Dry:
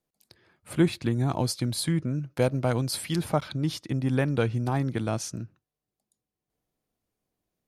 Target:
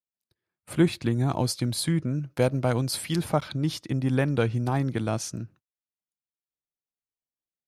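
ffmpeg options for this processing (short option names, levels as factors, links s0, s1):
-af "agate=range=0.0562:threshold=0.00251:ratio=16:detection=peak,volume=1.12"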